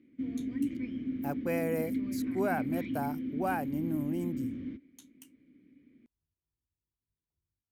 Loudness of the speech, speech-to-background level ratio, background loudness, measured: −35.5 LKFS, 0.5 dB, −36.0 LKFS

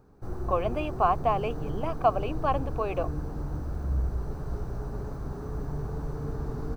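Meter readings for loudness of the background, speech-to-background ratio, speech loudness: −35.0 LKFS, 6.0 dB, −29.0 LKFS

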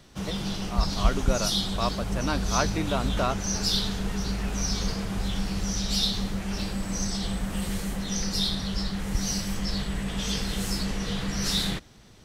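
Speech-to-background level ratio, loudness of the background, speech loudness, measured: −2.5 dB, −29.0 LKFS, −31.5 LKFS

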